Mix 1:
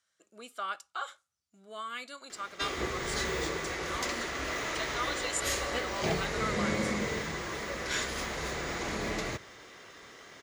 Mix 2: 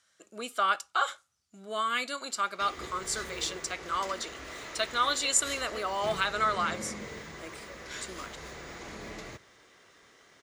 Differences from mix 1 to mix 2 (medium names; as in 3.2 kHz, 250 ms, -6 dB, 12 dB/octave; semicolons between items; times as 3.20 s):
speech +9.5 dB; background -8.5 dB